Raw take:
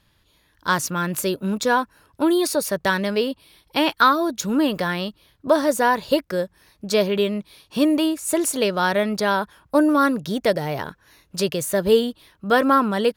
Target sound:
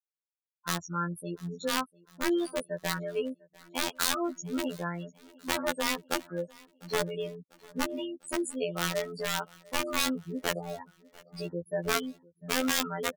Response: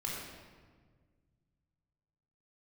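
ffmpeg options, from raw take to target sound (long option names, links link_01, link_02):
-filter_complex "[0:a]adynamicequalizer=threshold=0.0112:dfrequency=1300:dqfactor=6.5:tfrequency=1300:tqfactor=6.5:attack=5:release=100:ratio=0.375:range=3.5:mode=boostabove:tftype=bell,afftfilt=real='re*gte(hypot(re,im),0.141)':imag='im*gte(hypot(re,im),0.141)':win_size=1024:overlap=0.75,aeval=exprs='(mod(3.76*val(0)+1,2)-1)/3.76':channel_layout=same,afftfilt=real='hypot(re,im)*cos(PI*b)':imag='0':win_size=2048:overlap=0.75,asplit=2[link_01][link_02];[link_02]aecho=0:1:698|1396|2094:0.0631|0.0341|0.0184[link_03];[link_01][link_03]amix=inputs=2:normalize=0,volume=-7.5dB"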